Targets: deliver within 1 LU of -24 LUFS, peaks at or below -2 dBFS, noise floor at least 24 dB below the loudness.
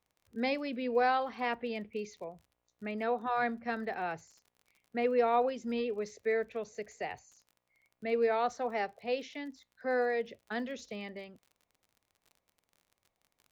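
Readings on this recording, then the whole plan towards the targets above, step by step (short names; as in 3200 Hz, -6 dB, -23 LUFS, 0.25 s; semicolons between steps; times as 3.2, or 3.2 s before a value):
ticks 37/s; loudness -34.0 LUFS; peak -17.5 dBFS; loudness target -24.0 LUFS
-> de-click; gain +10 dB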